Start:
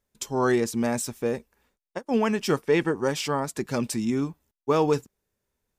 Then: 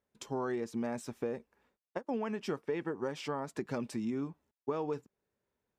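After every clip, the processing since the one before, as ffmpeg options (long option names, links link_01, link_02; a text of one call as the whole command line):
ffmpeg -i in.wav -af "highpass=frequency=170:poles=1,acompressor=threshold=-31dB:ratio=6,lowpass=frequency=1700:poles=1,volume=-1dB" out.wav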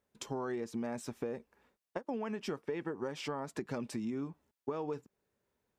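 ffmpeg -i in.wav -af "acompressor=threshold=-41dB:ratio=2,volume=3dB" out.wav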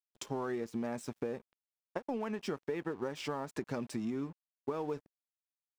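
ffmpeg -i in.wav -af "aeval=exprs='sgn(val(0))*max(abs(val(0))-0.00141,0)':channel_layout=same,volume=1.5dB" out.wav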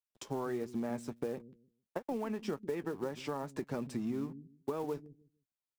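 ffmpeg -i in.wav -filter_complex "[0:a]acrossover=split=300|1200[link_01][link_02][link_03];[link_01]aecho=1:1:152|304|456:0.422|0.0886|0.0186[link_04];[link_02]acrusher=bits=5:mode=log:mix=0:aa=0.000001[link_05];[link_03]flanger=delay=6.7:depth=6.1:regen=36:speed=1.5:shape=triangular[link_06];[link_04][link_05][link_06]amix=inputs=3:normalize=0" out.wav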